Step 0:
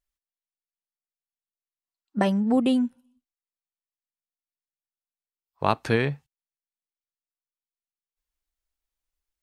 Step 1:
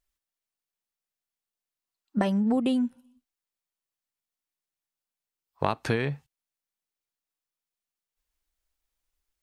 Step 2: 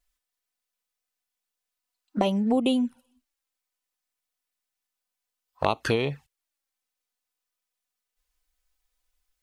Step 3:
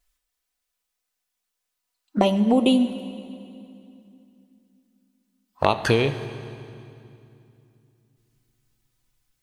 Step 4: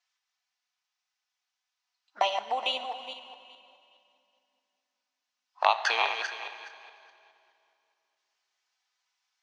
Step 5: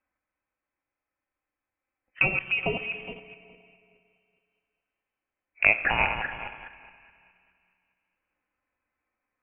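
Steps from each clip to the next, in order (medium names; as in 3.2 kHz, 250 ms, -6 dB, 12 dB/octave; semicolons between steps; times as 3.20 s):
compression, threshold -26 dBFS, peak gain reduction 11 dB; trim +4 dB
peaking EQ 150 Hz -9 dB 2.2 oct; touch-sensitive flanger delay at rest 4 ms, full sweep at -27 dBFS; trim +7.5 dB
reverberation RT60 2.7 s, pre-delay 4 ms, DRR 9.5 dB; trim +4.5 dB
backward echo that repeats 209 ms, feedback 41%, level -6.5 dB; Chebyshev band-pass 770–5900 Hz, order 3
in parallel at -9 dB: small samples zeroed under -40 dBFS; on the sum: frequency inversion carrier 3.3 kHz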